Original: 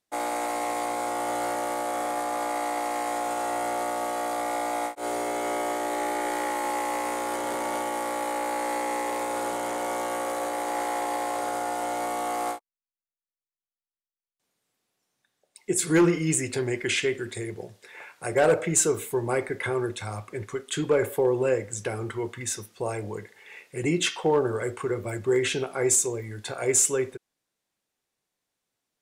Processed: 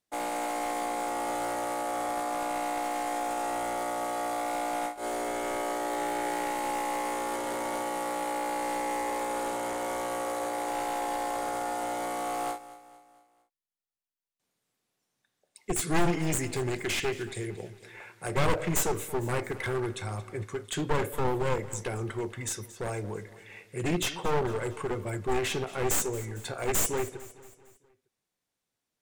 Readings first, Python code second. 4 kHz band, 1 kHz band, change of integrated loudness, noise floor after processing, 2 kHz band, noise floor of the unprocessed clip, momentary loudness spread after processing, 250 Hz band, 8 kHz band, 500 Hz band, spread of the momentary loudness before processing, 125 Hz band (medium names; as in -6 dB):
-3.0 dB, -2.5 dB, -4.0 dB, under -85 dBFS, -3.5 dB, under -85 dBFS, 8 LU, -4.5 dB, -7.0 dB, -5.0 dB, 11 LU, -0.5 dB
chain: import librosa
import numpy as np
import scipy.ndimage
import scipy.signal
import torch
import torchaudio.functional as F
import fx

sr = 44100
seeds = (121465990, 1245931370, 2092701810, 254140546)

y = np.minimum(x, 2.0 * 10.0 ** (-24.5 / 20.0) - x)
y = fx.bass_treble(y, sr, bass_db=3, treble_db=0)
y = fx.echo_feedback(y, sr, ms=227, feedback_pct=49, wet_db=-17.0)
y = y * librosa.db_to_amplitude(-3.0)